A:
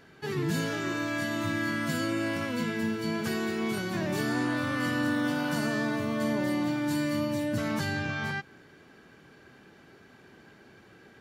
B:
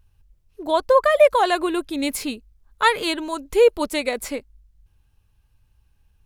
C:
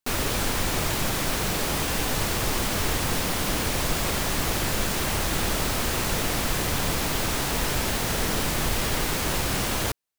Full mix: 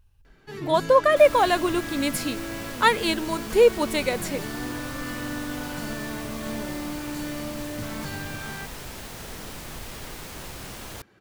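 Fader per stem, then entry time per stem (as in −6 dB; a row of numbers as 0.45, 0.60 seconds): −4.5, −1.5, −12.5 decibels; 0.25, 0.00, 1.10 seconds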